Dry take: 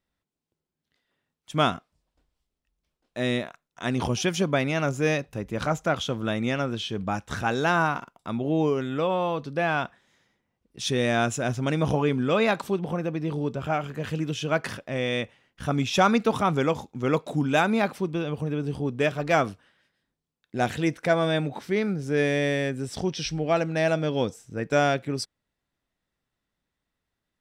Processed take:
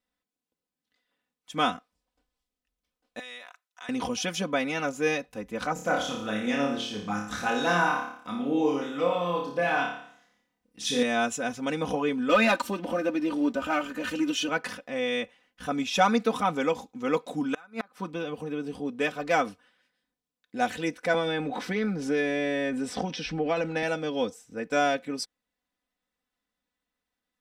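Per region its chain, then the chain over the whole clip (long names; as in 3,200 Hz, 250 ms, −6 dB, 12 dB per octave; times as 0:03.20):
0:03.19–0:03.89: high-pass filter 910 Hz + downward compressor 5 to 1, threshold −36 dBFS
0:05.73–0:11.03: auto-filter notch sine 7.3 Hz 410–3,700 Hz + flutter between parallel walls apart 4.9 metres, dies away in 0.61 s
0:12.29–0:14.49: comb filter 3.3 ms, depth 79% + leveller curve on the samples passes 1
0:17.53–0:18.10: parametric band 1,300 Hz +9.5 dB 0.78 octaves + gate with flip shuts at −12 dBFS, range −31 dB
0:21.14–0:23.83: transient designer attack +1 dB, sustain +6 dB + low-pass filter 3,200 Hz 6 dB per octave + multiband upward and downward compressor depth 100%
whole clip: low-shelf EQ 180 Hz −9.5 dB; comb filter 4 ms, depth 77%; level −3.5 dB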